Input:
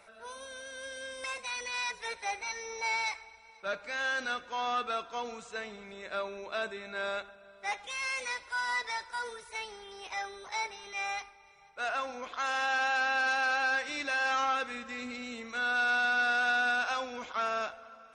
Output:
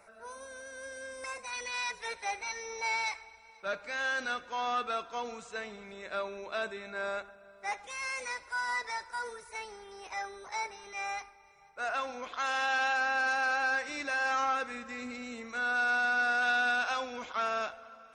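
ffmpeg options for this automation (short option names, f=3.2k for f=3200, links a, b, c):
-af "asetnsamples=n=441:p=0,asendcmd='1.53 equalizer g -2;6.9 equalizer g -9.5;11.94 equalizer g 0.5;12.93 equalizer g -7;16.42 equalizer g 0',equalizer=f=3.3k:t=o:w=0.65:g=-13.5"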